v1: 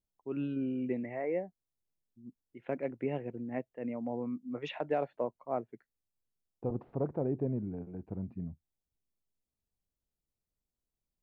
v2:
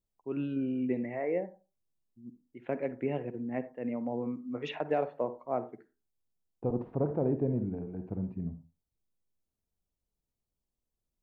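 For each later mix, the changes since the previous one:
reverb: on, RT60 0.30 s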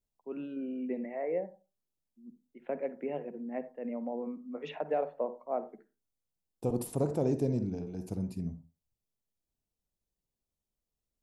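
first voice: add rippled Chebyshev high-pass 150 Hz, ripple 6 dB; second voice: remove LPF 1800 Hz 24 dB/oct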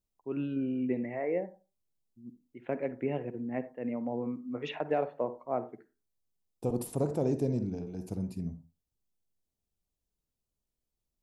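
first voice: remove rippled Chebyshev high-pass 150 Hz, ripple 6 dB

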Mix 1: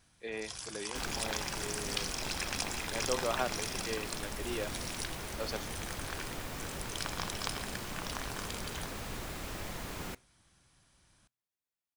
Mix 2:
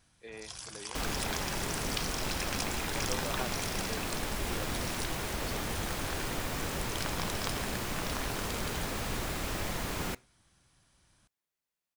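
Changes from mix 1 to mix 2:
speech -6.5 dB; first sound: send off; second sound +6.0 dB

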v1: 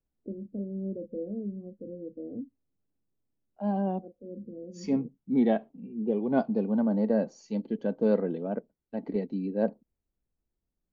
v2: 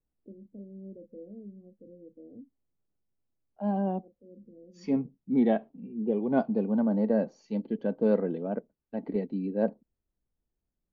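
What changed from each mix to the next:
first voice -10.0 dB; master: add LPF 3800 Hz 12 dB/oct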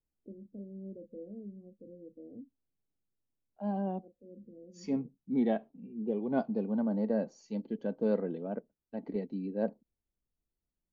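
second voice -5.0 dB; master: remove LPF 3800 Hz 12 dB/oct

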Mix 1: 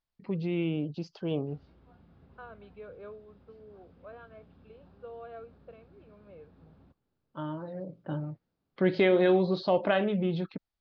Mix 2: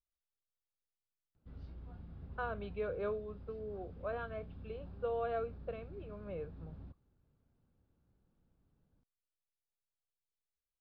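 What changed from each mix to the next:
first voice: muted; second voice +8.0 dB; background: remove HPF 280 Hz 6 dB/oct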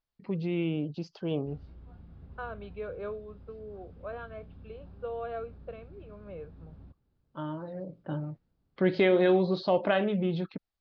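first voice: unmuted

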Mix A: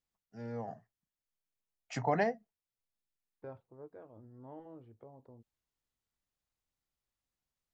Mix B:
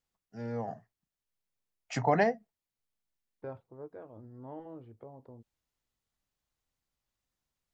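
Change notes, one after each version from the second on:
first voice +4.5 dB; second voice +5.0 dB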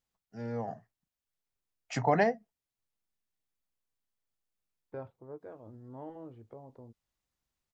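second voice: entry +1.50 s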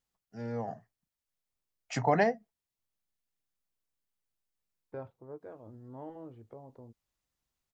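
first voice: add high shelf 6700 Hz +3 dB

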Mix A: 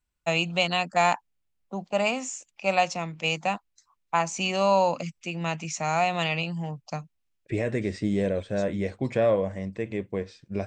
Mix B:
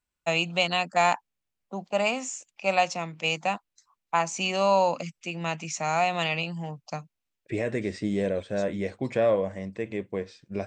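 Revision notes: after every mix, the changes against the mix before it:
master: add low shelf 110 Hz -9.5 dB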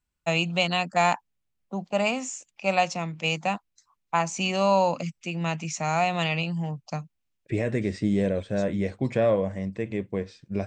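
master: add tone controls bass +7 dB, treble 0 dB

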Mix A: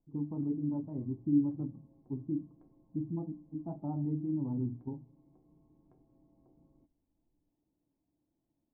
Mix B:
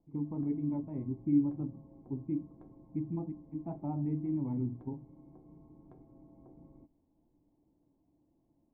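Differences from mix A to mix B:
speech: remove running mean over 19 samples; background +9.5 dB

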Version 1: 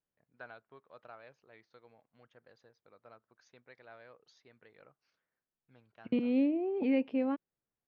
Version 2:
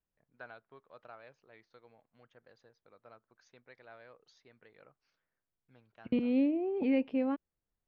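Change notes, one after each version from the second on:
second voice: remove HPF 130 Hz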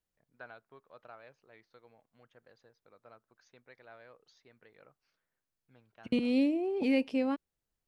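second voice: remove air absorption 450 m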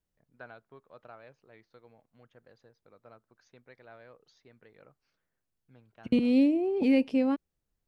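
master: add low shelf 430 Hz +7 dB

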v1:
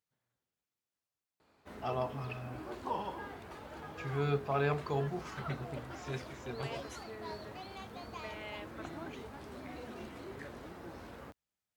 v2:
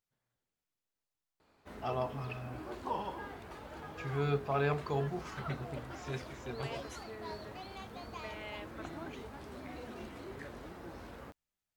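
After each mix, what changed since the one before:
master: remove HPF 58 Hz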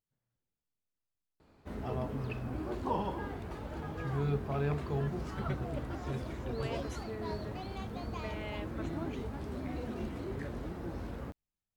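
first voice -8.5 dB; master: add low shelf 390 Hz +12 dB

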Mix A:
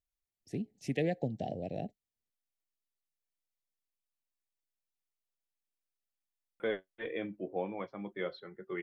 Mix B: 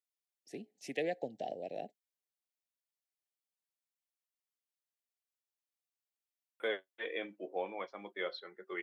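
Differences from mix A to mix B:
second voice: add high shelf 4100 Hz +12 dB; master: add HPF 430 Hz 12 dB/oct

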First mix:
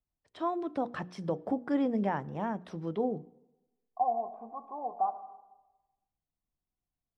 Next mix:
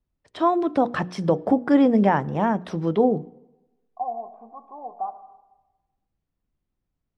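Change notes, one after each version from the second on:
first voice +12.0 dB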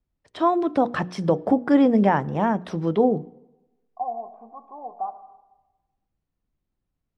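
none

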